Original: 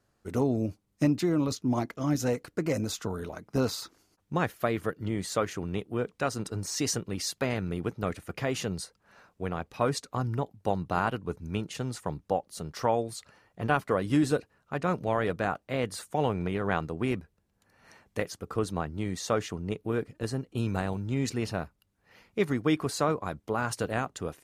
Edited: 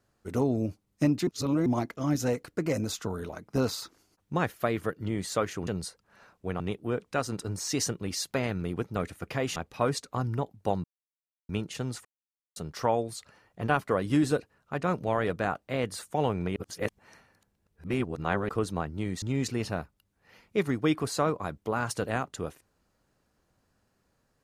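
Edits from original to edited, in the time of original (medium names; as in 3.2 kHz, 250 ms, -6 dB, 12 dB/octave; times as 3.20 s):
1.27–1.66 s: reverse
8.63–9.56 s: move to 5.67 s
10.84–11.49 s: mute
12.05–12.56 s: mute
16.56–18.49 s: reverse
19.22–21.04 s: delete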